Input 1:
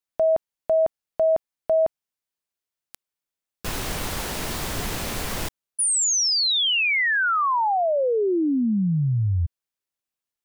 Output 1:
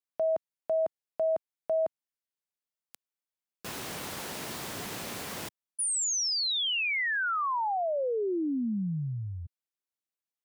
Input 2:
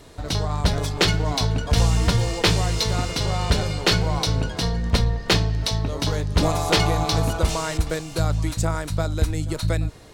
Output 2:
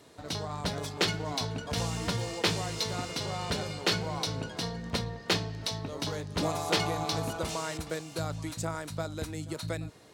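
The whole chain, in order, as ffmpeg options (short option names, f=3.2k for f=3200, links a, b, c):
-af "highpass=140,volume=-8dB"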